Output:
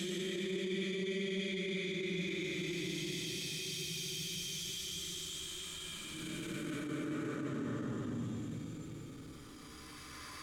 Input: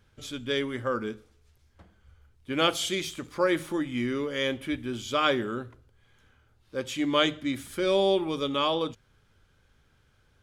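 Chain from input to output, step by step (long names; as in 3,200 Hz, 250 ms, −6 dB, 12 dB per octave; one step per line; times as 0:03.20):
extreme stretch with random phases 24×, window 0.10 s, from 0:02.90
transient designer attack −12 dB, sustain +1 dB
reversed playback
downward compressor 4 to 1, threshold −39 dBFS, peak gain reduction 13 dB
reversed playback
dynamic equaliser 170 Hz, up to +6 dB, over −56 dBFS, Q 0.88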